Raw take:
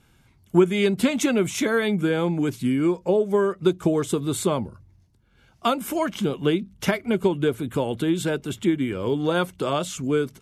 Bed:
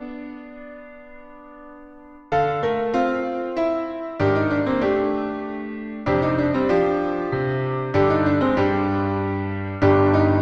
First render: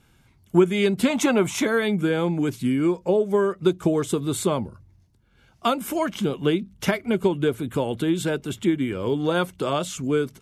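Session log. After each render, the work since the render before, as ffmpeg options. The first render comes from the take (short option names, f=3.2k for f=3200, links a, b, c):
-filter_complex "[0:a]asettb=1/sr,asplit=3[a][b][c];[a]atrim=end=1.104[d];[b]atrim=start=1.1:end=1.65,asetpts=PTS-STARTPTS,afade=t=in:d=0.004:c=qsin,afade=t=out:st=0.546:d=0.004:c=qsin,equalizer=f=930:t=o:w=0.98:g=10.5[e];[c]atrim=start=1.646[f];[d][e]acrossfade=d=0.004:c1=hsin:c2=qsin[g];[g][f]acrossfade=d=0.004:c1=qsin:c2=hsin"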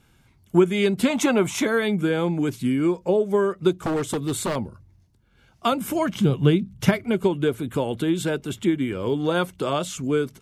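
-filter_complex "[0:a]asettb=1/sr,asplit=3[a][b][c];[a]atrim=end=3.754[d];[b]atrim=start=3.75:end=4.56,asetpts=PTS-STARTPTS,afade=t=in:d=0.004:c=qsin,afade=t=out:st=0.806:d=0.004:c=qsin,aeval=exprs='0.119*(abs(mod(val(0)/0.119+3,4)-2)-1)':c=same[e];[c]atrim=start=4.556[f];[d][e]acrossfade=d=0.004:c1=hsin:c2=qsin[g];[g][f]acrossfade=d=0.004:c1=qsin:c2=hsin,asettb=1/sr,asplit=3[h][i][j];[h]atrim=end=5.724[k];[i]atrim=start=5.72:end=7.04,asetpts=PTS-STARTPTS,afade=t=in:d=0.004:c=qsin,afade=t=out:st=1.316:d=0.004:c=qsin,equalizer=f=120:t=o:w=0.98:g=15[l];[j]atrim=start=7.036[m];[k][l]acrossfade=d=0.004:c1=hsin:c2=qsin[n];[n][m]acrossfade=d=0.004:c1=qsin:c2=hsin"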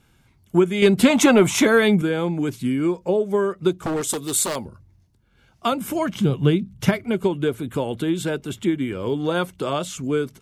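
-filter_complex "[0:a]asettb=1/sr,asplit=3[a][b][c];[a]atrim=end=0.824[d];[b]atrim=start=0.82:end=2.02,asetpts=PTS-STARTPTS,afade=t=in:d=0.004:c=qsin,afade=t=out:st=1.196:d=0.004:c=qsin,acontrast=64[e];[c]atrim=start=2.016[f];[d][e]acrossfade=d=0.004:c1=hsin:c2=qsin[g];[g][f]acrossfade=d=0.004:c1=qsin:c2=hsin,asettb=1/sr,asplit=3[h][i][j];[h]atrim=end=4.014[k];[i]atrim=start=4.01:end=4.65,asetpts=PTS-STARTPTS,afade=t=in:d=0.004:c=qsin,afade=t=out:st=0.636:d=0.004:c=qsin,bass=f=250:g=-8,treble=f=4k:g=11[l];[j]atrim=start=4.646[m];[k][l]acrossfade=d=0.004:c1=hsin:c2=qsin[n];[n][m]acrossfade=d=0.004:c1=qsin:c2=hsin"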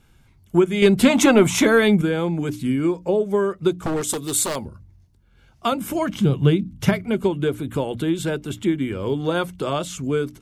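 -af "lowshelf=f=86:g=9.5,bandreject=f=60:t=h:w=6,bandreject=f=120:t=h:w=6,bandreject=f=180:t=h:w=6,bandreject=f=240:t=h:w=6,bandreject=f=300:t=h:w=6"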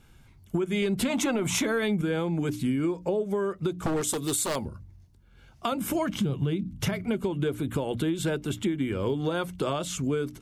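-af "alimiter=limit=-13.5dB:level=0:latency=1:release=126,acompressor=threshold=-25dB:ratio=3"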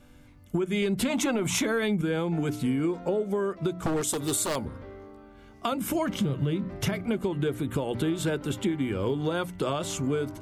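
-filter_complex "[1:a]volume=-25dB[a];[0:a][a]amix=inputs=2:normalize=0"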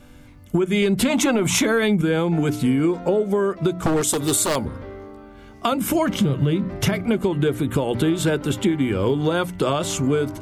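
-af "volume=7.5dB"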